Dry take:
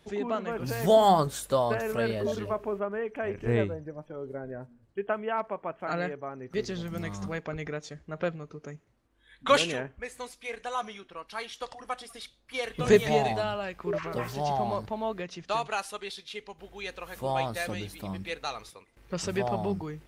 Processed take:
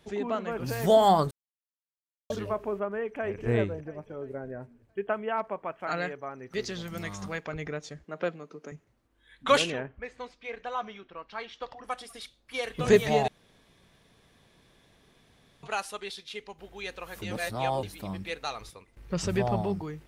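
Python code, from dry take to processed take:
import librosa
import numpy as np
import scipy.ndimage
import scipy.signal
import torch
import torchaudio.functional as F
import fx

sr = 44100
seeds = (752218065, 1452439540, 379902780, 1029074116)

y = fx.echo_throw(x, sr, start_s=3.04, length_s=0.42, ms=340, feedback_pct=45, wet_db=-11.5)
y = fx.tilt_shelf(y, sr, db=-3.5, hz=820.0, at=(5.65, 7.54))
y = fx.highpass(y, sr, hz=190.0, slope=24, at=(8.04, 8.72))
y = fx.air_absorb(y, sr, metres=180.0, at=(9.7, 11.84))
y = fx.low_shelf(y, sr, hz=160.0, db=10.0, at=(18.61, 19.62))
y = fx.edit(y, sr, fx.silence(start_s=1.31, length_s=0.99),
    fx.room_tone_fill(start_s=13.28, length_s=2.35),
    fx.reverse_span(start_s=17.22, length_s=0.61), tone=tone)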